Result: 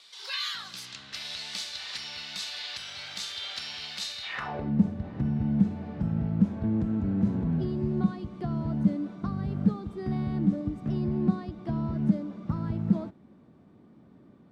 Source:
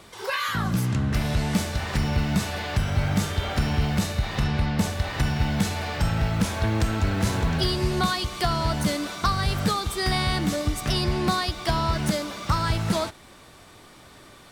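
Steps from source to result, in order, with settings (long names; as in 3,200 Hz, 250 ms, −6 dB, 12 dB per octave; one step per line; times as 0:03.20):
band-pass filter sweep 4,100 Hz → 210 Hz, 0:04.22–0:04.73
level +4 dB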